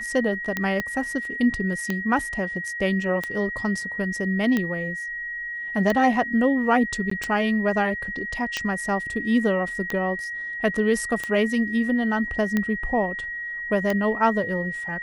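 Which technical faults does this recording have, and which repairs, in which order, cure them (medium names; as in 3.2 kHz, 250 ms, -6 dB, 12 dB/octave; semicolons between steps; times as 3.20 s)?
tick 45 rpm -11 dBFS
whine 1.9 kHz -29 dBFS
0.80 s: pop -12 dBFS
7.10–7.11 s: dropout 14 ms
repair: de-click; band-stop 1.9 kHz, Q 30; interpolate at 7.10 s, 14 ms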